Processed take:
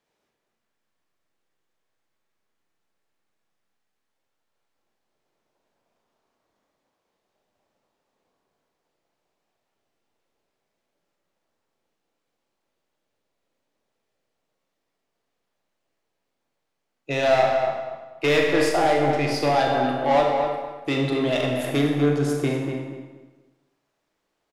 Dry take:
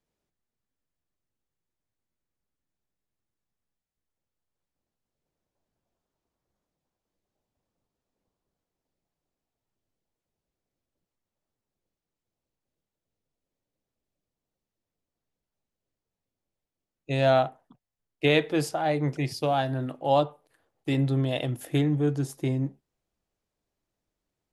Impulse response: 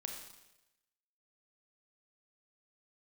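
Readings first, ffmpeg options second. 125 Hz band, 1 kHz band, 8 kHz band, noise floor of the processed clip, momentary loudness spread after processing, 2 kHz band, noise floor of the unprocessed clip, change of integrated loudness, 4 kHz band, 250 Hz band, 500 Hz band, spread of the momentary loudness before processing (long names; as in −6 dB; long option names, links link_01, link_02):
−1.0 dB, +6.5 dB, +6.0 dB, −79 dBFS, 11 LU, +7.0 dB, below −85 dBFS, +4.5 dB, +4.5 dB, +4.0 dB, +6.0 dB, 8 LU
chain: -filter_complex "[0:a]asplit=2[link_01][link_02];[link_02]highpass=frequency=720:poles=1,volume=21dB,asoftclip=type=tanh:threshold=-8.5dB[link_03];[link_01][link_03]amix=inputs=2:normalize=0,lowpass=frequency=3000:poles=1,volume=-6dB,asplit=2[link_04][link_05];[link_05]adelay=241,lowpass=frequency=2200:poles=1,volume=-5dB,asplit=2[link_06][link_07];[link_07]adelay=241,lowpass=frequency=2200:poles=1,volume=0.27,asplit=2[link_08][link_09];[link_09]adelay=241,lowpass=frequency=2200:poles=1,volume=0.27,asplit=2[link_10][link_11];[link_11]adelay=241,lowpass=frequency=2200:poles=1,volume=0.27[link_12];[link_04][link_06][link_08][link_10][link_12]amix=inputs=5:normalize=0[link_13];[1:a]atrim=start_sample=2205[link_14];[link_13][link_14]afir=irnorm=-1:irlink=0"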